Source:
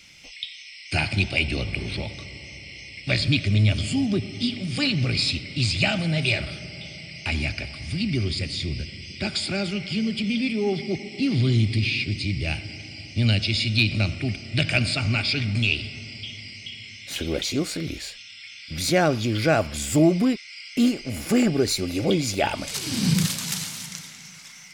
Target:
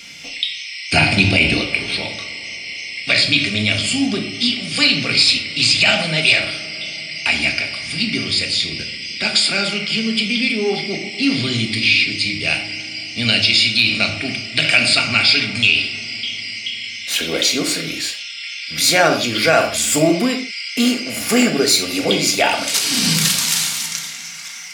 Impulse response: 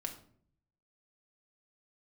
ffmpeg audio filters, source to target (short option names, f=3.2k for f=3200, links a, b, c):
-filter_complex "[0:a]asetnsamples=n=441:p=0,asendcmd='1.54 highpass f 1000',highpass=f=180:p=1[a];[1:a]atrim=start_sample=2205,afade=t=out:st=0.21:d=0.01,atrim=end_sample=9702[b];[a][b]afir=irnorm=-1:irlink=0,alimiter=level_in=15dB:limit=-1dB:release=50:level=0:latency=1,volume=-1dB"